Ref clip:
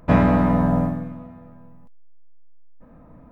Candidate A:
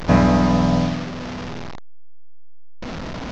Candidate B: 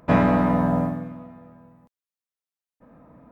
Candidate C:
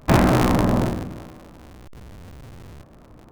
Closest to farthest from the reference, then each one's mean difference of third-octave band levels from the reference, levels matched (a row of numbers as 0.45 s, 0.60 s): B, C, A; 1.0 dB, 7.0 dB, 10.5 dB